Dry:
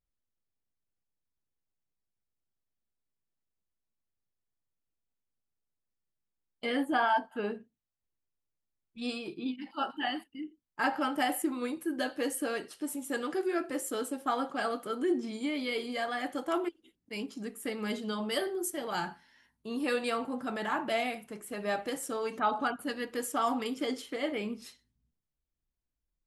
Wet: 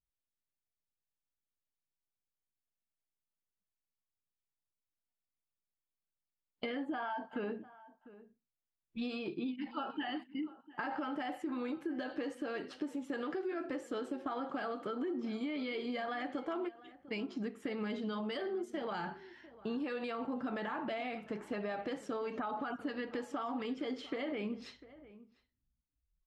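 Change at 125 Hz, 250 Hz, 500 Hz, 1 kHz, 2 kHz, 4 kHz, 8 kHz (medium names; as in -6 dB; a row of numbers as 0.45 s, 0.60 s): -2.0 dB, -3.5 dB, -5.5 dB, -8.0 dB, -7.5 dB, -8.5 dB, under -20 dB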